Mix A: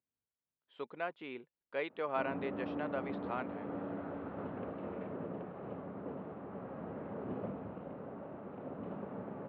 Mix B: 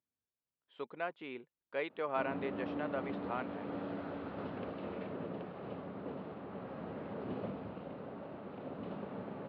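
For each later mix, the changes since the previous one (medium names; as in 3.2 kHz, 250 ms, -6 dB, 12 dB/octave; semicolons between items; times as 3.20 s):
background: remove low-pass 1.8 kHz 12 dB/octave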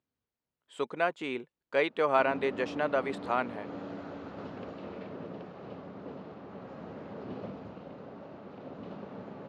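speech +10.0 dB; master: remove low-pass 3.8 kHz 24 dB/octave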